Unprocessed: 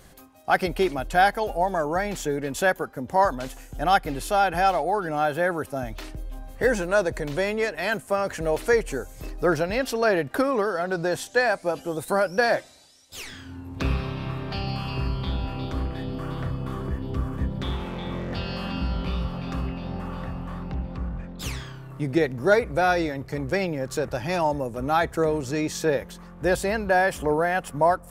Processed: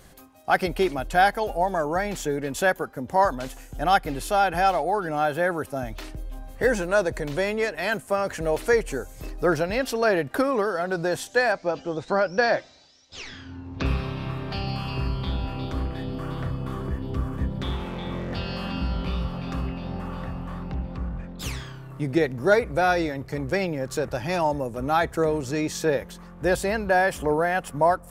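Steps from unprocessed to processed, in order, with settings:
0:11.52–0:13.86: Butterworth low-pass 6,200 Hz 36 dB per octave

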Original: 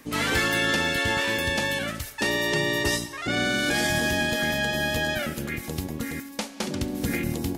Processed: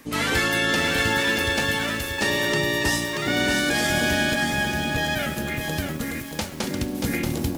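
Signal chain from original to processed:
0:04.34–0:04.98: moving average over 8 samples
feedback echo at a low word length 632 ms, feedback 35%, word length 7 bits, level −4.5 dB
level +1.5 dB

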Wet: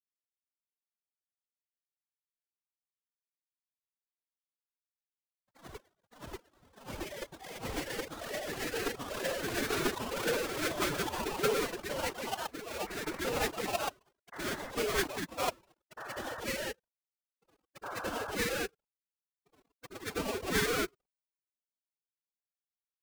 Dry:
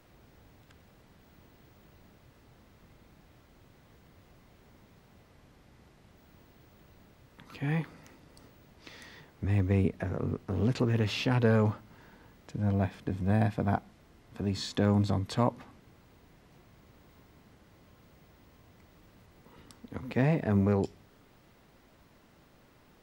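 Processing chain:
three sine waves on the formant tracks
downward expander −53 dBFS
in parallel at −0.5 dB: downward compressor 5 to 1, threshold −34 dBFS, peak gain reduction 14.5 dB
on the sum: sample-rate reduction 1,800 Hz, jitter 20%
dead-zone distortion −52.5 dBFS
phase-vocoder pitch shift with formants kept +9.5 semitones
sound drawn into the spectrogram noise, 0:17.83–0:18.32, 490–1,700 Hz −33 dBFS
delay with pitch and tempo change per echo 84 ms, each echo +2 semitones, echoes 3
level −8.5 dB

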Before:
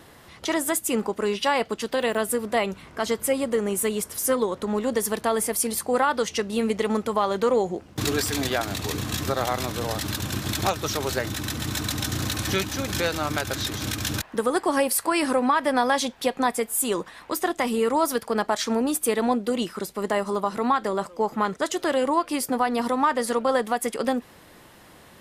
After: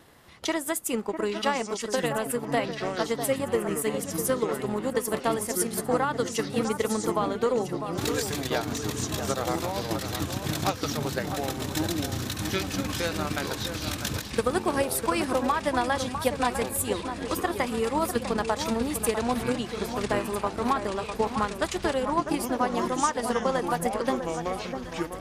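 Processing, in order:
delay with pitch and tempo change per echo 638 ms, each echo −7 semitones, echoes 2, each echo −6 dB
transient designer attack +6 dB, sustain −3 dB
delay that swaps between a low-pass and a high-pass 651 ms, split 1,700 Hz, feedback 64%, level −8 dB
level −6 dB

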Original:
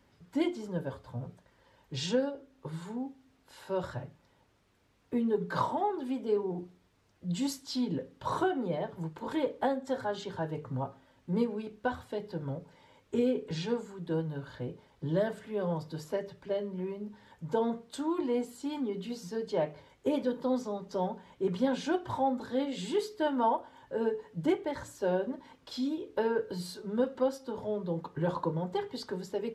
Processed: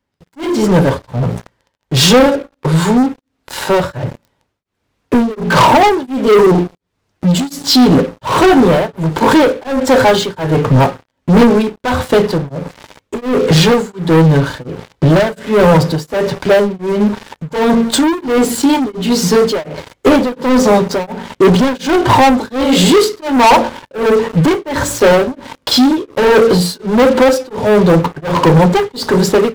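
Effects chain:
hum removal 57.21 Hz, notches 10
leveller curve on the samples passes 5
automatic gain control gain up to 12 dB
tremolo along a rectified sine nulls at 1.4 Hz
level +2 dB

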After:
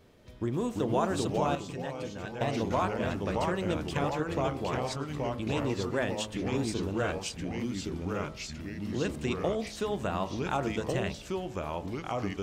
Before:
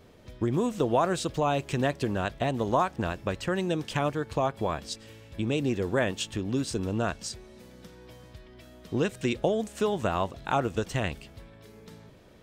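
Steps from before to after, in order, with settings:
delay with pitch and tempo change per echo 290 ms, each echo −2 semitones, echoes 3
0:01.55–0:02.41: tuned comb filter 170 Hz, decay 0.17 s, harmonics odd, mix 70%
hum removal 53 Hz, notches 25
level −4 dB

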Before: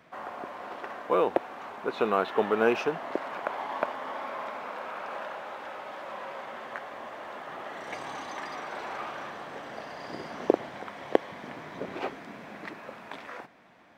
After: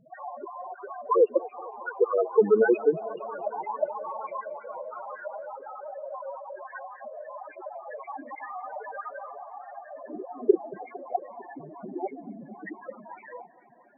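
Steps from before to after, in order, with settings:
time-frequency cells dropped at random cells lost 31%
0:09.39–0:09.90: high-pass filter 600 Hz 24 dB per octave
spectral peaks only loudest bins 4
feedback echo with a low-pass in the loop 227 ms, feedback 76%, low-pass 5,000 Hz, level −22.5 dB
level +8.5 dB

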